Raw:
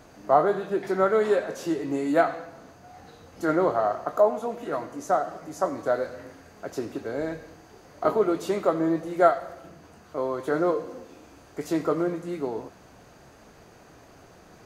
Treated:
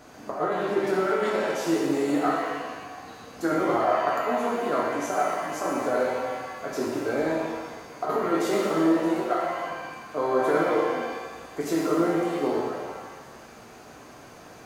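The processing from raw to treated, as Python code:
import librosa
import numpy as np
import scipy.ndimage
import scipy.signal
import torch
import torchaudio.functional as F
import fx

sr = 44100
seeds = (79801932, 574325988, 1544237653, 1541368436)

y = fx.low_shelf(x, sr, hz=140.0, db=-8.5)
y = fx.over_compress(y, sr, threshold_db=-25.0, ratio=-0.5)
y = fx.rev_shimmer(y, sr, seeds[0], rt60_s=1.4, semitones=7, shimmer_db=-8, drr_db=-3.0)
y = y * librosa.db_to_amplitude(-1.5)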